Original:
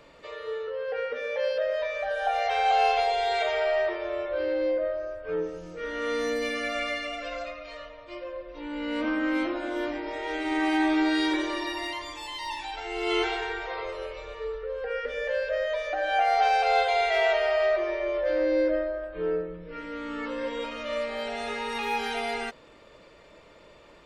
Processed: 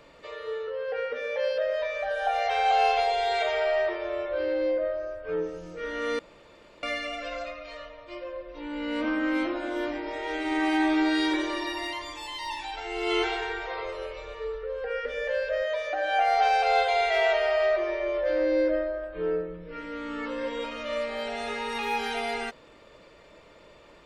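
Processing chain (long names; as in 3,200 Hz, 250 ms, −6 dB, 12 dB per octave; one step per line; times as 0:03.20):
0:06.19–0:06.83: fill with room tone
0:15.62–0:16.21: high-pass filter 100 Hz 6 dB per octave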